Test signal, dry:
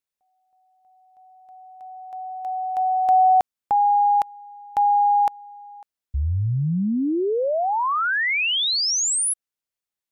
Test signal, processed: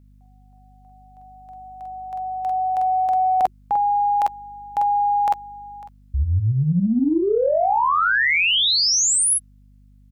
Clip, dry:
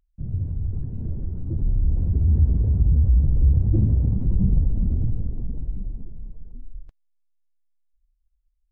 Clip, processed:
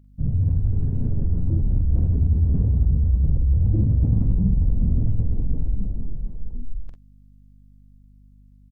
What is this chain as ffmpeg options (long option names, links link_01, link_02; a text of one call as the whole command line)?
ffmpeg -i in.wav -af "bandreject=frequency=360:width=12,aecho=1:1:46|58:0.631|0.15,areverse,acompressor=threshold=-29dB:ratio=5:attack=75:release=38:knee=1:detection=peak,areverse,aeval=exprs='val(0)+0.00158*(sin(2*PI*50*n/s)+sin(2*PI*2*50*n/s)/2+sin(2*PI*3*50*n/s)/3+sin(2*PI*4*50*n/s)/4+sin(2*PI*5*50*n/s)/5)':channel_layout=same,acontrast=23,volume=1.5dB" out.wav